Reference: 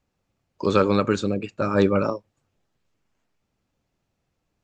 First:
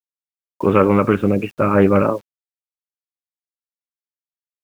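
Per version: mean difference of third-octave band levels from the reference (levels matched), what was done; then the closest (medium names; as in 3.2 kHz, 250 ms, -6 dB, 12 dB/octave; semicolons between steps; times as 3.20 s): 4.0 dB: steep low-pass 3 kHz 72 dB/octave; in parallel at +1.5 dB: peak limiter -14 dBFS, peak gain reduction 8.5 dB; on the sum: bit crusher 8-bit; loudspeaker Doppler distortion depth 0.13 ms; trim +1 dB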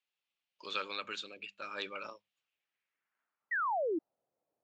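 8.5 dB: high-pass 80 Hz; hum notches 50/100/150/200 Hz; band-pass sweep 3.1 kHz -> 600 Hz, 2.39–4.23 s; painted sound fall, 3.51–3.99 s, 300–2000 Hz -31 dBFS; trim -1.5 dB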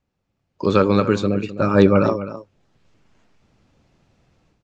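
2.5 dB: low-pass 6.3 kHz 12 dB/octave; level rider gain up to 16 dB; peaking EQ 130 Hz +3 dB 2.7 oct; on a send: delay 258 ms -13.5 dB; on the sum: trim -2 dB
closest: third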